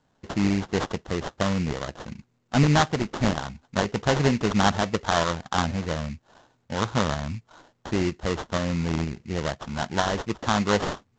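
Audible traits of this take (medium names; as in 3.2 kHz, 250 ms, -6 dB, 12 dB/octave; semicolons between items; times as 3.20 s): aliases and images of a low sample rate 2.4 kHz, jitter 20%; tremolo saw up 2.1 Hz, depth 30%; µ-law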